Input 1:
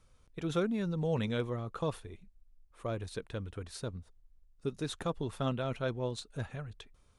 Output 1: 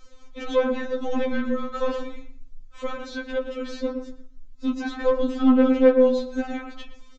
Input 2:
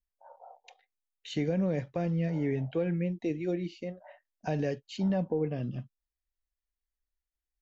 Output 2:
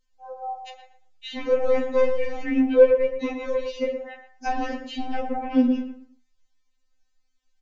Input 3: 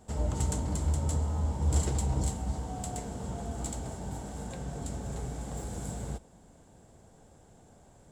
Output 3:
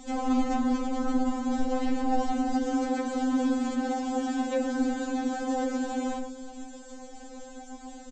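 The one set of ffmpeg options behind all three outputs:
-filter_complex "[0:a]acrossover=split=4200[link_01][link_02];[link_02]acompressor=threshold=-57dB:ratio=4:attack=1:release=60[link_03];[link_01][link_03]amix=inputs=2:normalize=0,bandreject=frequency=890:width=12,bandreject=frequency=216.7:width_type=h:width=4,bandreject=frequency=433.4:width_type=h:width=4,bandreject=frequency=650.1:width_type=h:width=4,bandreject=frequency=866.8:width_type=h:width=4,bandreject=frequency=1083.5:width_type=h:width=4,bandreject=frequency=1300.2:width_type=h:width=4,bandreject=frequency=1516.9:width_type=h:width=4,bandreject=frequency=1733.6:width_type=h:width=4,bandreject=frequency=1950.3:width_type=h:width=4,bandreject=frequency=2167:width_type=h:width=4,bandreject=frequency=2383.7:width_type=h:width=4,bandreject=frequency=2600.4:width_type=h:width=4,bandreject=frequency=2817.1:width_type=h:width=4,bandreject=frequency=3033.8:width_type=h:width=4,bandreject=frequency=3250.5:width_type=h:width=4,bandreject=frequency=3467.2:width_type=h:width=4,bandreject=frequency=3683.9:width_type=h:width=4,bandreject=frequency=3900.6:width_type=h:width=4,bandreject=frequency=4117.3:width_type=h:width=4,bandreject=frequency=4334:width_type=h:width=4,bandreject=frequency=4550.7:width_type=h:width=4,bandreject=frequency=4767.4:width_type=h:width=4,bandreject=frequency=4984.1:width_type=h:width=4,bandreject=frequency=5200.8:width_type=h:width=4,bandreject=frequency=5417.5:width_type=h:width=4,bandreject=frequency=5634.2:width_type=h:width=4,bandreject=frequency=5850.9:width_type=h:width=4,bandreject=frequency=6067.6:width_type=h:width=4,bandreject=frequency=6284.3:width_type=h:width=4,bandreject=frequency=6501:width_type=h:width=4,bandreject=frequency=6717.7:width_type=h:width=4,bandreject=frequency=6934.4:width_type=h:width=4,bandreject=frequency=7151.1:width_type=h:width=4,bandreject=frequency=7367.8:width_type=h:width=4,bandreject=frequency=7584.5:width_type=h:width=4,bandreject=frequency=7801.2:width_type=h:width=4,acrossover=split=350|2200[link_04][link_05][link_06];[link_05]flanger=delay=18:depth=7.9:speed=0.92[link_07];[link_06]acompressor=threshold=-58dB:ratio=6[link_08];[link_04][link_07][link_08]amix=inputs=3:normalize=0,apsyclip=28dB,flanger=delay=9.3:depth=8:regen=-64:speed=0.33:shape=triangular,asoftclip=type=tanh:threshold=-7dB,asplit=2[link_09][link_10];[link_10]adelay=117,lowpass=frequency=1400:poles=1,volume=-7dB,asplit=2[link_11][link_12];[link_12]adelay=117,lowpass=frequency=1400:poles=1,volume=0.28,asplit=2[link_13][link_14];[link_14]adelay=117,lowpass=frequency=1400:poles=1,volume=0.28[link_15];[link_11][link_13][link_15]amix=inputs=3:normalize=0[link_16];[link_09][link_16]amix=inputs=2:normalize=0,aresample=16000,aresample=44100,afftfilt=real='re*3.46*eq(mod(b,12),0)':imag='im*3.46*eq(mod(b,12),0)':win_size=2048:overlap=0.75,volume=-5dB"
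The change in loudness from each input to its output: +13.0, +8.5, +5.0 LU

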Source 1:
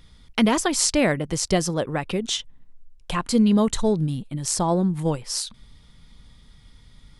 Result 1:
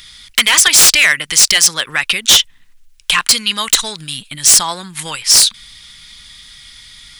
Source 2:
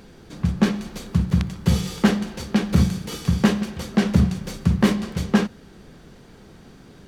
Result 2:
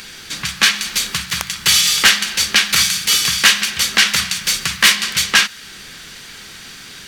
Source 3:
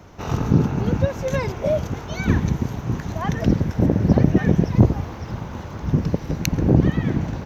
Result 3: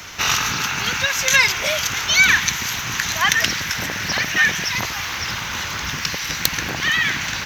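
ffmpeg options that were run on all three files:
-filter_complex "[0:a]acrossover=split=1600[link_01][link_02];[link_01]acompressor=threshold=-30dB:ratio=6[link_03];[link_02]aeval=exprs='0.794*sin(PI/2*10*val(0)/0.794)':channel_layout=same[link_04];[link_03][link_04]amix=inputs=2:normalize=0,volume=-1dB"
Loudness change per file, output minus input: +13.0, +8.5, +2.5 LU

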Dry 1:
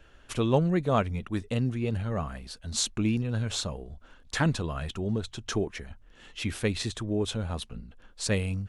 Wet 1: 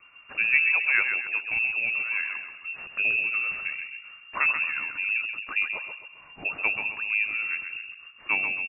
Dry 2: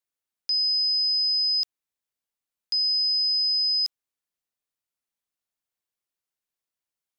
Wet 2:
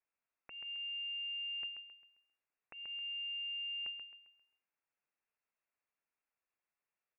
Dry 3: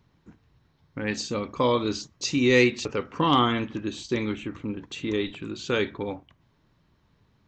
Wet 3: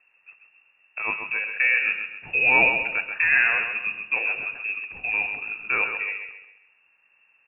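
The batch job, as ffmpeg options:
-af "aeval=exprs='0.355*(cos(1*acos(clip(val(0)/0.355,-1,1)))-cos(1*PI/2))+0.00794*(cos(6*acos(clip(val(0)/0.355,-1,1)))-cos(6*PI/2))':channel_layout=same,aecho=1:1:133|266|399|532|665:0.447|0.174|0.0679|0.0265|0.0103,lowpass=frequency=2400:width_type=q:width=0.5098,lowpass=frequency=2400:width_type=q:width=0.6013,lowpass=frequency=2400:width_type=q:width=0.9,lowpass=frequency=2400:width_type=q:width=2.563,afreqshift=-2800,volume=1dB"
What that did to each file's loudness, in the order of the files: +5.0, −18.5, +4.0 LU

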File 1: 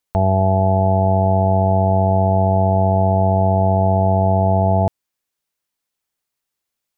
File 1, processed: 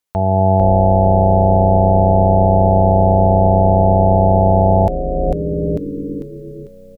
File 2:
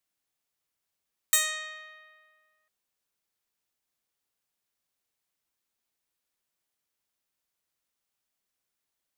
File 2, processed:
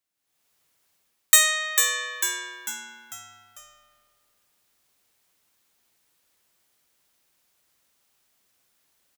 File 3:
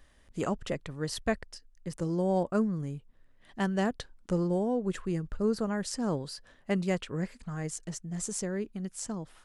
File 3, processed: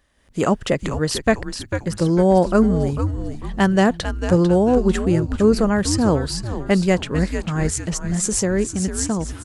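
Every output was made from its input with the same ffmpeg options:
-filter_complex "[0:a]highpass=frequency=51:poles=1,asplit=6[link_01][link_02][link_03][link_04][link_05][link_06];[link_02]adelay=447,afreqshift=-130,volume=-8.5dB[link_07];[link_03]adelay=894,afreqshift=-260,volume=-15.8dB[link_08];[link_04]adelay=1341,afreqshift=-390,volume=-23.2dB[link_09];[link_05]adelay=1788,afreqshift=-520,volume=-30.5dB[link_10];[link_06]adelay=2235,afreqshift=-650,volume=-37.8dB[link_11];[link_01][link_07][link_08][link_09][link_10][link_11]amix=inputs=6:normalize=0,dynaudnorm=framelen=130:gausssize=5:maxgain=15dB,volume=-1dB"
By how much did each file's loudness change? +3.0, +5.5, +13.0 LU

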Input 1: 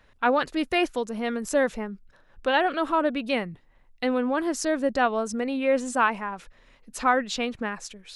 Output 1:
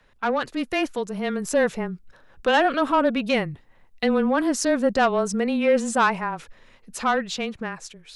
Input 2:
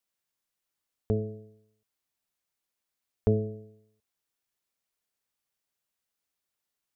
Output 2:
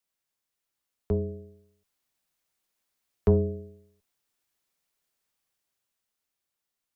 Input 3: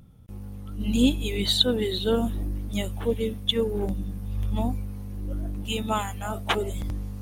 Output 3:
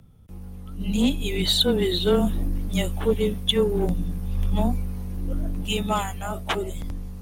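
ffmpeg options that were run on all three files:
-af "asoftclip=type=tanh:threshold=-15dB,dynaudnorm=framelen=130:gausssize=21:maxgain=5dB,afreqshift=-17"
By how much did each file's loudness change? +2.5, +3.0, +2.5 LU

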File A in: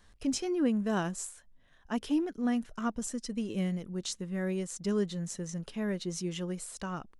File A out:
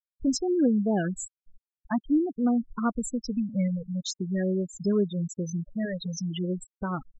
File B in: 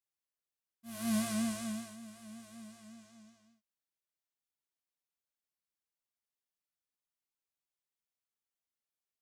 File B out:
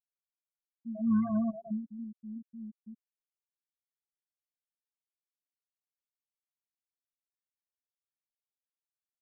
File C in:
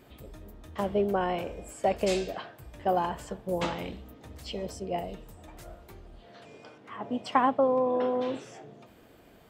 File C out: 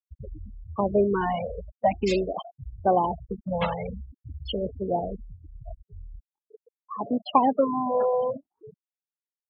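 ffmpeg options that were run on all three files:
-filter_complex "[0:a]afftfilt=real='re*gte(hypot(re,im),0.0316)':imag='im*gte(hypot(re,im),0.0316)':win_size=1024:overlap=0.75,asplit=2[link_01][link_02];[link_02]acompressor=threshold=-42dB:ratio=6,volume=0dB[link_03];[link_01][link_03]amix=inputs=2:normalize=0,afftfilt=real='re*(1-between(b*sr/1024,290*pow(2600/290,0.5+0.5*sin(2*PI*0.46*pts/sr))/1.41,290*pow(2600/290,0.5+0.5*sin(2*PI*0.46*pts/sr))*1.41))':imag='im*(1-between(b*sr/1024,290*pow(2600/290,0.5+0.5*sin(2*PI*0.46*pts/sr))/1.41,290*pow(2600/290,0.5+0.5*sin(2*PI*0.46*pts/sr))*1.41))':win_size=1024:overlap=0.75,volume=4dB"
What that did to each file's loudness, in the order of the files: +5.0, +3.5, +3.5 LU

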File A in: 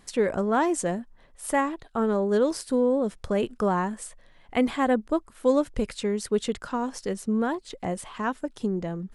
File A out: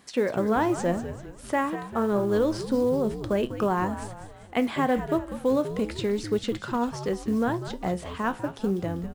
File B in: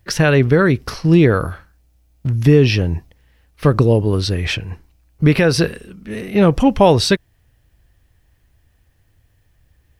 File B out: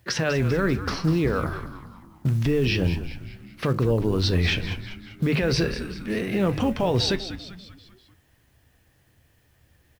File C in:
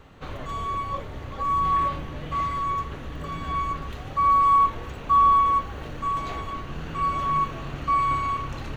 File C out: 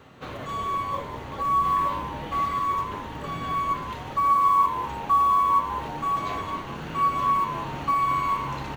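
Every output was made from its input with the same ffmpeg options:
-filter_complex "[0:a]acrossover=split=6000[link_01][link_02];[link_02]acompressor=threshold=-54dB:ratio=4:attack=1:release=60[link_03];[link_01][link_03]amix=inputs=2:normalize=0,highpass=99,bandreject=frequency=50:width_type=h:width=6,bandreject=frequency=100:width_type=h:width=6,bandreject=frequency=150:width_type=h:width=6,asplit=2[link_04][link_05];[link_05]acompressor=threshold=-24dB:ratio=16,volume=0dB[link_06];[link_04][link_06]amix=inputs=2:normalize=0,alimiter=limit=-10.5dB:level=0:latency=1:release=18,acrusher=bits=8:mode=log:mix=0:aa=0.000001,flanger=delay=7.9:depth=7.5:regen=78:speed=0.28:shape=sinusoidal,asplit=6[link_07][link_08][link_09][link_10][link_11][link_12];[link_08]adelay=196,afreqshift=-99,volume=-11dB[link_13];[link_09]adelay=392,afreqshift=-198,volume=-17dB[link_14];[link_10]adelay=588,afreqshift=-297,volume=-23dB[link_15];[link_11]adelay=784,afreqshift=-396,volume=-29.1dB[link_16];[link_12]adelay=980,afreqshift=-495,volume=-35.1dB[link_17];[link_07][link_13][link_14][link_15][link_16][link_17]amix=inputs=6:normalize=0"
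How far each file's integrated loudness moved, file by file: −0.5, −9.0, −0.5 LU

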